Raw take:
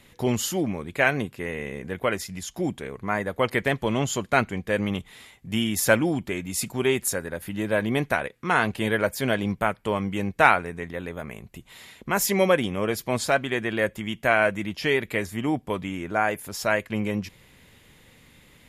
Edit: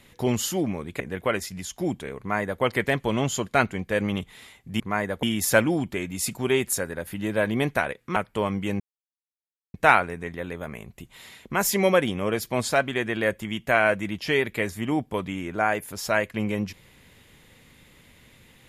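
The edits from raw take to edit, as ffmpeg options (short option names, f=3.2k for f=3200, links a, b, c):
-filter_complex "[0:a]asplit=6[a][b][c][d][e][f];[a]atrim=end=1.002[g];[b]atrim=start=1.778:end=5.582[h];[c]atrim=start=2.968:end=3.402[i];[d]atrim=start=5.578:end=8.512[j];[e]atrim=start=9.658:end=10.3,asetpts=PTS-STARTPTS,afade=t=out:st=0.638:d=0.004:c=hsin,apad=pad_dur=0.94[k];[f]atrim=start=10.3,asetpts=PTS-STARTPTS,afade=t=in:d=0.004:c=hsin[l];[g][h]acrossfade=d=0.004:c1=hsin:c2=hsin[m];[m][i]acrossfade=d=0.004:c1=hsin:c2=hsin[n];[n][j]acrossfade=d=0.004:c1=hsin:c2=hsin[o];[k][l]concat=n=2:v=0:a=1[p];[o][p]acrossfade=d=0.004:c1=hsin:c2=hsin"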